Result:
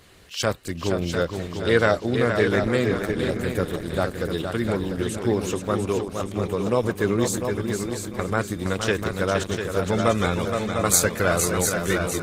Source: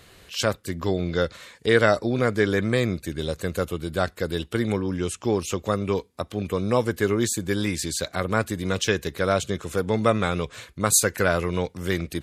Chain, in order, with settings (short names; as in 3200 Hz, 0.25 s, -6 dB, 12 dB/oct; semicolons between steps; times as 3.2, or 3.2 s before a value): 7.46–8.19 metallic resonator 98 Hz, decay 0.59 s, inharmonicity 0.03; multi-head echo 0.233 s, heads second and third, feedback 43%, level -6.5 dB; Opus 16 kbps 48000 Hz